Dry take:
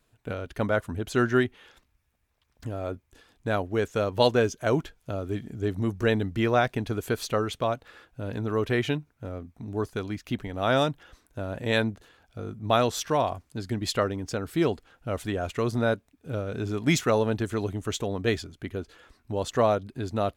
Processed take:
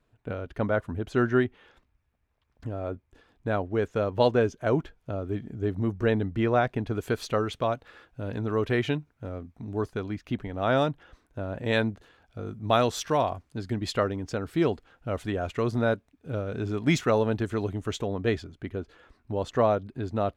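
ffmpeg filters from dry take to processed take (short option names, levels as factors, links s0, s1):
-af "asetnsamples=n=441:p=0,asendcmd='6.95 lowpass f 4200;9.91 lowpass f 2200;11.65 lowpass f 3700;12.46 lowpass f 7000;13.23 lowpass f 3500;18.04 lowpass f 2100',lowpass=f=1700:p=1"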